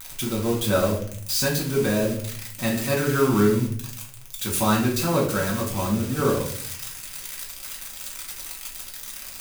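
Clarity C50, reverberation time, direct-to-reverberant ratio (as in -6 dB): 7.0 dB, 0.60 s, -3.5 dB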